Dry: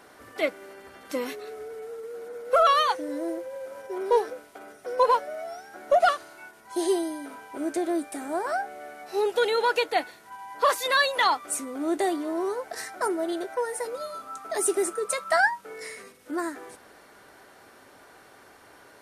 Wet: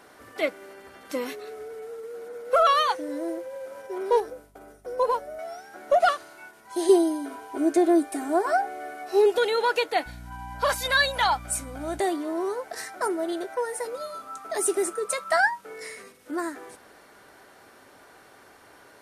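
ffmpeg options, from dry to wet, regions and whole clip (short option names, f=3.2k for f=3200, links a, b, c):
-filter_complex "[0:a]asettb=1/sr,asplit=3[a][b][c];[a]atrim=end=4.204[d];[b]atrim=start=4.2:end=5.39,asetpts=PTS-STARTPTS,afade=t=in:d=0.004:c=qsin,afade=t=out:st=1.186:d=0.004:c=qsin,agate=range=-33dB:threshold=-49dB:ratio=3:release=100:detection=peak,equalizer=f=2.5k:t=o:w=2.8:g=-8.5,aeval=exprs='val(0)+0.00112*(sin(2*PI*50*n/s)+sin(2*PI*2*50*n/s)/2+sin(2*PI*3*50*n/s)/3+sin(2*PI*4*50*n/s)/4+sin(2*PI*5*50*n/s)/5)':c=same[e];[c]atrim=start=5.386[f];[d][e]acrossfade=d=0.004:c1=hsin:c2=qsin[g];[g][f]acrossfade=d=0.004:c1=qsin:c2=hsin,asettb=1/sr,asplit=3[h][i][j];[h]atrim=end=6.894[k];[i]atrim=start=6.89:end=9.38,asetpts=PTS-STARTPTS,afade=t=in:d=0.004:c=qsin,afade=t=out:st=2.486:d=0.004:c=qsin,equalizer=f=380:w=0.55:g=3,aecho=1:1:2.8:0.72,atrim=end_sample=109809[l];[j]atrim=start=9.376[m];[k][l]acrossfade=d=0.004:c1=hsin:c2=qsin[n];[n][m]acrossfade=d=0.004:c1=qsin:c2=hsin,asettb=1/sr,asplit=3[o][p][q];[o]atrim=end=10.064[r];[p]atrim=start=10.06:end=12,asetpts=PTS-STARTPTS,afade=t=in:d=0.004:c=qsin,afade=t=out:st=1.936:d=0.004:c=qsin,lowshelf=f=280:g=-9.5,aecho=1:1:1.3:0.49,atrim=end_sample=85554,aeval=exprs='val(0)+0.01*(sin(2*PI*60*n/s)+sin(2*PI*2*60*n/s)/2+sin(2*PI*3*60*n/s)/3+sin(2*PI*4*60*n/s)/4+sin(2*PI*5*60*n/s)/5)':c=same[s];[q]atrim=start=11.996[t];[r][s]acrossfade=d=0.004:c1=hsin:c2=qsin[u];[u][t]acrossfade=d=0.004:c1=qsin:c2=hsin"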